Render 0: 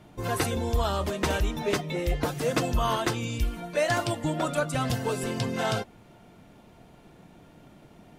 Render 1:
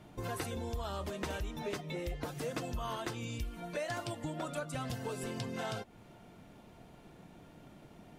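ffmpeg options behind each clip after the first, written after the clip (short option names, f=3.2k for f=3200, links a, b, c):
-af "acompressor=threshold=-35dB:ratio=3,volume=-3dB"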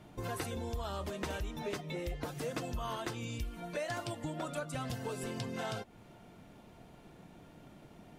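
-af anull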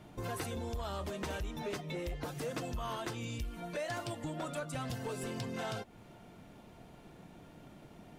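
-af "asoftclip=type=tanh:threshold=-31dB,volume=1dB"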